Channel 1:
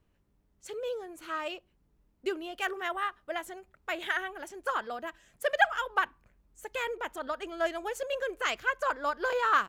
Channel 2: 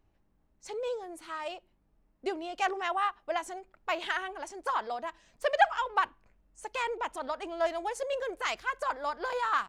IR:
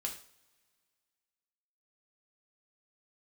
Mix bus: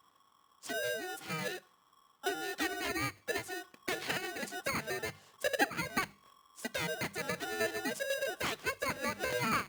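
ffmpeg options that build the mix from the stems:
-filter_complex "[0:a]volume=-10dB[a];[1:a]acompressor=threshold=-38dB:ratio=3,aeval=exprs='val(0)*sgn(sin(2*PI*1100*n/s))':c=same,volume=-1,volume=0dB,asplit=2[b][c];[c]volume=-14dB[d];[2:a]atrim=start_sample=2205[e];[d][e]afir=irnorm=-1:irlink=0[f];[a][b][f]amix=inputs=3:normalize=0,highpass=140,lowshelf=f=430:g=5,bandreject=f=50:t=h:w=6,bandreject=f=100:t=h:w=6,bandreject=f=150:t=h:w=6,bandreject=f=200:t=h:w=6"

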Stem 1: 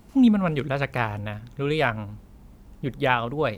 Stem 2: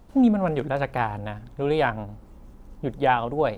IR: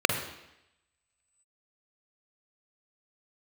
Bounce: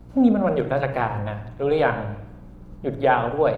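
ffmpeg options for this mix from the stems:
-filter_complex "[0:a]volume=-5.5dB[a];[1:a]aeval=exprs='val(0)+0.00891*(sin(2*PI*60*n/s)+sin(2*PI*2*60*n/s)/2+sin(2*PI*3*60*n/s)/3+sin(2*PI*4*60*n/s)/4+sin(2*PI*5*60*n/s)/5)':c=same,volume=-1,adelay=7.2,volume=-2dB,asplit=3[b][c][d];[c]volume=-14dB[e];[d]apad=whole_len=157674[f];[a][f]sidechaincompress=threshold=-28dB:ratio=8:attack=16:release=186[g];[2:a]atrim=start_sample=2205[h];[e][h]afir=irnorm=-1:irlink=0[i];[g][b][i]amix=inputs=3:normalize=0,highshelf=f=3.9k:g=-6.5"

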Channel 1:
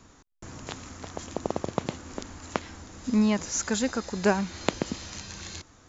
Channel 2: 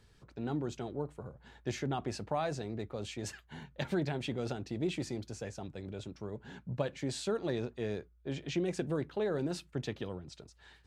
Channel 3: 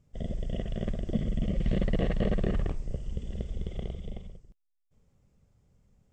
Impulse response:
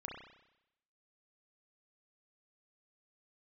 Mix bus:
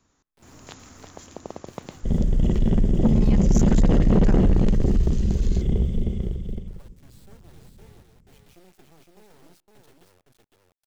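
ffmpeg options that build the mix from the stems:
-filter_complex "[0:a]dynaudnorm=f=200:g=5:m=9dB,volume=-14dB,asplit=2[a][b];[b]volume=-20dB[c];[1:a]acrossover=split=370[d][e];[e]acompressor=threshold=-37dB:ratio=5[f];[d][f]amix=inputs=2:normalize=0,acrusher=bits=4:dc=4:mix=0:aa=0.000001,volume=-16.5dB,asplit=3[g][h][i];[h]volume=-22dB[j];[i]volume=-3.5dB[k];[2:a]lowshelf=f=480:t=q:w=1.5:g=9.5,adelay=1900,volume=2.5dB,asplit=3[l][m][n];[m]volume=-4dB[o];[n]volume=-4dB[p];[3:a]atrim=start_sample=2205[q];[c][j][o]amix=inputs=3:normalize=0[r];[r][q]afir=irnorm=-1:irlink=0[s];[k][p]amix=inputs=2:normalize=0,aecho=0:1:511:1[t];[a][g][l][s][t]amix=inputs=5:normalize=0,highshelf=f=6.1k:g=4,asoftclip=type=tanh:threshold=-12dB"

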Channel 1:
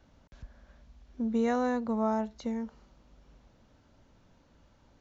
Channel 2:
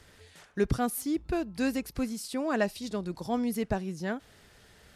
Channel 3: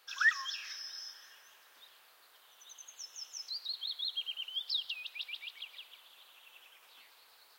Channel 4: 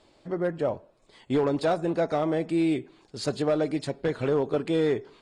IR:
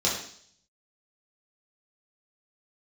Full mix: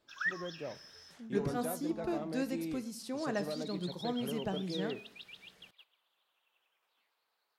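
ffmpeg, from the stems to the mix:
-filter_complex "[0:a]volume=-18.5dB[a];[1:a]adelay=750,volume=-8.5dB,asplit=2[b][c];[c]volume=-21.5dB[d];[2:a]agate=range=-11dB:threshold=-48dB:ratio=16:detection=peak,highshelf=f=2.5k:g=-9.5,volume=-3.5dB[e];[3:a]volume=-16dB[f];[4:a]atrim=start_sample=2205[g];[d][g]afir=irnorm=-1:irlink=0[h];[a][b][e][f][h]amix=inputs=5:normalize=0,lowshelf=f=100:t=q:w=1.5:g=-9"

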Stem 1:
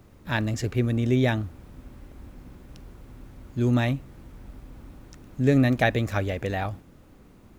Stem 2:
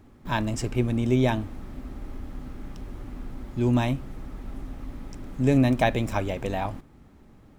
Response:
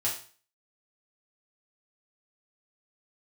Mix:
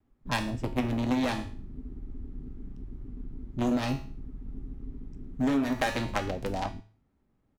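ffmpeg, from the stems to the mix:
-filter_complex "[0:a]acrusher=bits=2:mix=0:aa=0.5,volume=-1.5dB,asplit=2[a][b];[b]volume=-8.5dB[c];[1:a]afwtdn=0.0316,highshelf=f=5.1k:g=-5.5,adelay=3.5,volume=-4.5dB,asplit=3[d][e][f];[e]volume=-15dB[g];[f]apad=whole_len=334350[h];[a][h]sidechaincompress=threshold=-30dB:ratio=8:attack=47:release=103[i];[2:a]atrim=start_sample=2205[j];[c][g]amix=inputs=2:normalize=0[k];[k][j]afir=irnorm=-1:irlink=0[l];[i][d][l]amix=inputs=3:normalize=0,acompressor=threshold=-23dB:ratio=10"

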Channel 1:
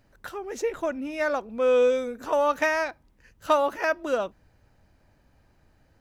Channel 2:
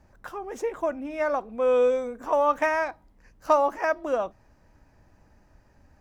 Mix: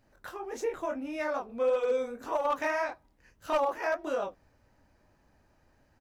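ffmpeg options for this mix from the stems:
-filter_complex "[0:a]alimiter=limit=-17dB:level=0:latency=1,volume=-6dB[a];[1:a]highpass=f=220:w=0.5412,highpass=f=220:w=1.3066,flanger=delay=4.6:depth=9.1:regen=45:speed=1.7:shape=triangular,asoftclip=type=hard:threshold=-19dB,adelay=24,volume=-3dB,asplit=2[b][c];[c]apad=whole_len=264738[d];[a][d]sidechaincompress=threshold=-32dB:ratio=8:attack=6.4:release=106[e];[e][b]amix=inputs=2:normalize=0"

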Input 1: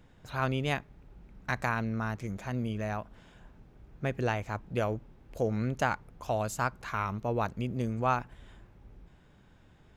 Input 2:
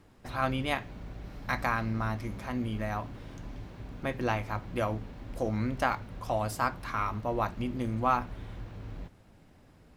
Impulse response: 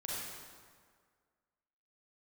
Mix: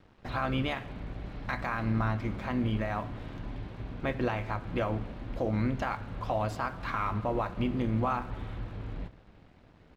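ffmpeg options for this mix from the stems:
-filter_complex "[0:a]aeval=exprs='val(0)*sin(2*PI*77*n/s)':c=same,volume=-10dB[a];[1:a]alimiter=limit=-23.5dB:level=0:latency=1:release=144,lowpass=f=4.2k:w=0.5412,lowpass=f=4.2k:w=1.3066,adelay=0.7,volume=3dB,asplit=2[b][c];[c]volume=-15.5dB[d];[2:a]atrim=start_sample=2205[e];[d][e]afir=irnorm=-1:irlink=0[f];[a][b][f]amix=inputs=3:normalize=0,aeval=exprs='sgn(val(0))*max(abs(val(0))-0.00119,0)':c=same"

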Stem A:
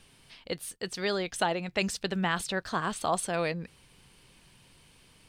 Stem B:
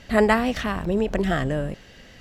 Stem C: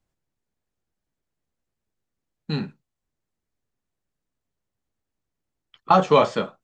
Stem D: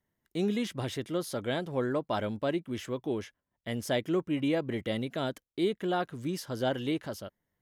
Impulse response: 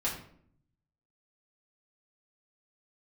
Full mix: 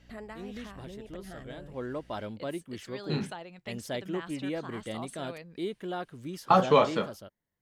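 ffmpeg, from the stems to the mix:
-filter_complex "[0:a]adelay=1900,volume=-14dB[a];[1:a]acompressor=threshold=-29dB:ratio=2.5,aeval=exprs='val(0)+0.00891*(sin(2*PI*60*n/s)+sin(2*PI*2*60*n/s)/2+sin(2*PI*3*60*n/s)/3+sin(2*PI*4*60*n/s)/4+sin(2*PI*5*60*n/s)/5)':c=same,volume=-16dB,asplit=2[b][c];[2:a]adelay=600,volume=-5dB[d];[3:a]volume=-5.5dB[e];[c]apad=whole_len=335755[f];[e][f]sidechaincompress=threshold=-52dB:ratio=8:attack=27:release=138[g];[a][b][d][g]amix=inputs=4:normalize=0"

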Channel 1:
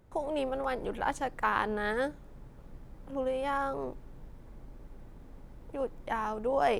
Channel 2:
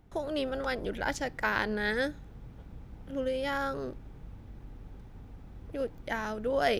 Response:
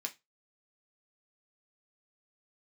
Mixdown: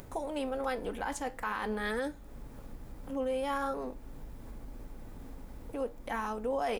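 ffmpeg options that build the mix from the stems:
-filter_complex "[0:a]highshelf=f=6.8k:g=10,acompressor=mode=upward:threshold=-34dB:ratio=2.5,flanger=delay=7.1:depth=4.1:regen=-77:speed=0.46:shape=sinusoidal,volume=1dB,asplit=2[a][b];[b]volume=-10.5dB[c];[1:a]adelay=3.5,volume=-11.5dB[d];[2:a]atrim=start_sample=2205[e];[c][e]afir=irnorm=-1:irlink=0[f];[a][d][f]amix=inputs=3:normalize=0,alimiter=level_in=0.5dB:limit=-24dB:level=0:latency=1:release=20,volume=-0.5dB"

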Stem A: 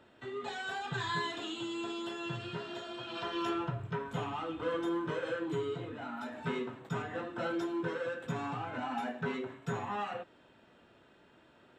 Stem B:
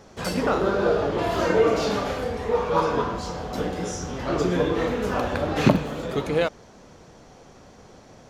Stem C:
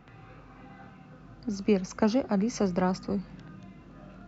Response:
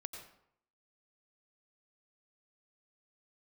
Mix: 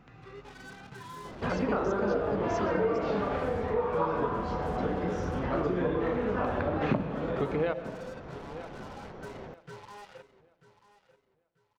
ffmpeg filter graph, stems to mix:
-filter_complex "[0:a]lowpass=2.5k,aecho=1:1:2.1:0.83,acrusher=bits=5:mix=0:aa=0.5,volume=-12.5dB,asplit=2[a][b];[b]volume=-15.5dB[c];[1:a]lowpass=2k,bandreject=f=58.14:t=h:w=4,bandreject=f=116.28:t=h:w=4,bandreject=f=174.42:t=h:w=4,bandreject=f=232.56:t=h:w=4,bandreject=f=290.7:t=h:w=4,bandreject=f=348.84:t=h:w=4,bandreject=f=406.98:t=h:w=4,bandreject=f=465.12:t=h:w=4,bandreject=f=523.26:t=h:w=4,bandreject=f=581.4:t=h:w=4,bandreject=f=639.54:t=h:w=4,bandreject=f=697.68:t=h:w=4,bandreject=f=755.82:t=h:w=4,bandreject=f=813.96:t=h:w=4,bandreject=f=872.1:t=h:w=4,adelay=1250,volume=2dB,asplit=3[d][e][f];[e]volume=-6.5dB[g];[f]volume=-22.5dB[h];[2:a]volume=-2dB[i];[3:a]atrim=start_sample=2205[j];[g][j]afir=irnorm=-1:irlink=0[k];[c][h]amix=inputs=2:normalize=0,aecho=0:1:939|1878|2817|3756:1|0.26|0.0676|0.0176[l];[a][d][i][k][l]amix=inputs=5:normalize=0,acompressor=threshold=-29dB:ratio=3"

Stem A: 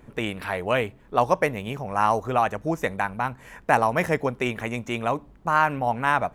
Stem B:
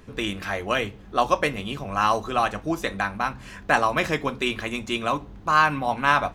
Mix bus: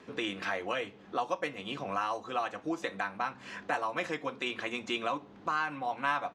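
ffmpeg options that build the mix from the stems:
-filter_complex "[0:a]highshelf=f=5.6k:t=q:w=3:g=8,volume=-16.5dB,asplit=2[a][b];[1:a]volume=-1,adelay=1.5,volume=0dB[c];[b]apad=whole_len=279859[d];[c][d]sidechaincompress=threshold=-45dB:ratio=8:attack=20:release=422[e];[a][e]amix=inputs=2:normalize=0,highpass=240,lowpass=5.4k"

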